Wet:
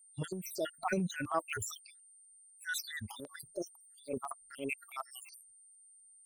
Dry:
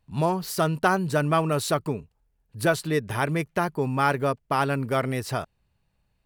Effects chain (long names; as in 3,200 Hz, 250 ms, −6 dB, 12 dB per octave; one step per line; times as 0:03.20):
time-frequency cells dropped at random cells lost 80%
noise reduction from a noise print of the clip's start 20 dB
transient designer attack −6 dB, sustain +10 dB
steady tone 8,900 Hz −53 dBFS
auto-filter notch saw down 4 Hz 550–5,800 Hz
level −4.5 dB